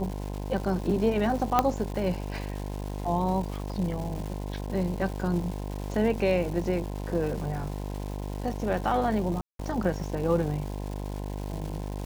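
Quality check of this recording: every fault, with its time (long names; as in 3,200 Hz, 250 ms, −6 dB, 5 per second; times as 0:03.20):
mains buzz 50 Hz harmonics 21 −34 dBFS
surface crackle 520 per second −36 dBFS
0:01.59: click −8 dBFS
0:09.41–0:09.59: drop-out 183 ms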